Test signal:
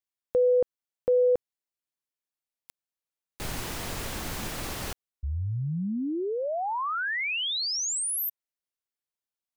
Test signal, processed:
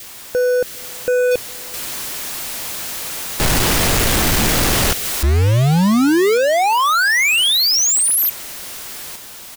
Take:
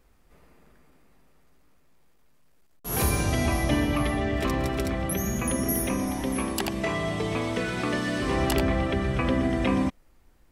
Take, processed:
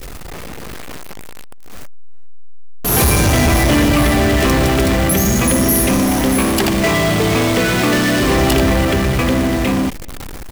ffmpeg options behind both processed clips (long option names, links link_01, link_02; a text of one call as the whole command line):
ffmpeg -i in.wav -filter_complex "[0:a]aeval=exprs='val(0)+0.5*0.0266*sgn(val(0))':channel_layout=same,adynamicequalizer=threshold=0.00631:dfrequency=970:dqfactor=1.7:tfrequency=970:tqfactor=1.7:attack=5:release=100:ratio=0.375:range=1.5:mode=cutabove:tftype=bell,dynaudnorm=framelen=300:gausssize=13:maxgain=10dB,asoftclip=type=tanh:threshold=-17.5dB,acrusher=bits=3:mode=log:mix=0:aa=0.000001,asplit=2[link_01][link_02];[link_02]adelay=408.2,volume=-29dB,highshelf=frequency=4000:gain=-9.18[link_03];[link_01][link_03]amix=inputs=2:normalize=0,volume=7dB" out.wav